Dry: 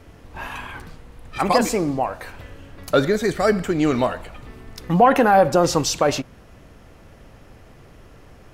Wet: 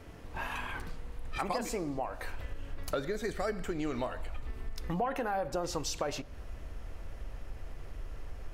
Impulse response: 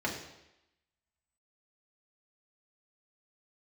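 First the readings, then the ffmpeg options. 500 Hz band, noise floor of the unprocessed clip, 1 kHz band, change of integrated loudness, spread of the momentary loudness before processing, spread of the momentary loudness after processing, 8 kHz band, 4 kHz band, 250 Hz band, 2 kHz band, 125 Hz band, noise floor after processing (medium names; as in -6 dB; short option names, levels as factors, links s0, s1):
-16.0 dB, -47 dBFS, -16.5 dB, -18.5 dB, 21 LU, 14 LU, -13.5 dB, -13.5 dB, -16.5 dB, -13.0 dB, -14.0 dB, -46 dBFS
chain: -filter_complex "[0:a]asubboost=boost=6.5:cutoff=60,acompressor=threshold=0.0355:ratio=4,asplit=2[s0][s1];[1:a]atrim=start_sample=2205[s2];[s1][s2]afir=irnorm=-1:irlink=0,volume=0.0562[s3];[s0][s3]amix=inputs=2:normalize=0,volume=0.631"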